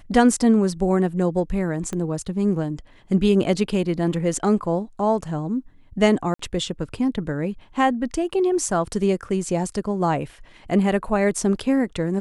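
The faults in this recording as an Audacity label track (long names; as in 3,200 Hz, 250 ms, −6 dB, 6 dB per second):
1.930000	1.930000	click −17 dBFS
6.340000	6.390000	drop-out 54 ms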